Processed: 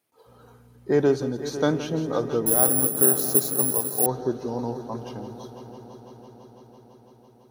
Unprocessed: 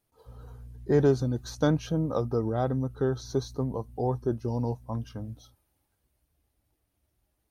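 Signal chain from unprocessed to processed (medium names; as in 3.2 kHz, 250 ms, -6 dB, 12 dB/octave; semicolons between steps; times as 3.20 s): high-pass 210 Hz 12 dB/octave; peaking EQ 2.3 kHz +4 dB 0.72 oct; multi-head delay 167 ms, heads first and third, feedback 74%, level -13.5 dB; reverberation RT60 0.55 s, pre-delay 37 ms, DRR 19 dB; 2.46–4.06 s: careless resampling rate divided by 4×, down none, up zero stuff; trim +3 dB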